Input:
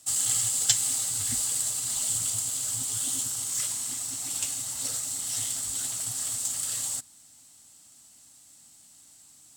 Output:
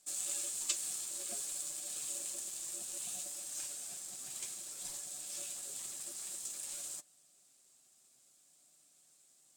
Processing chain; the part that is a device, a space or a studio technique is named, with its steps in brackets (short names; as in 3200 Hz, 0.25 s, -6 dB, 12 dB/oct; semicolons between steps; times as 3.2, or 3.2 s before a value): alien voice (ring modulator 460 Hz; flange 0.57 Hz, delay 6.7 ms, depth 1.2 ms, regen +45%); gain -5.5 dB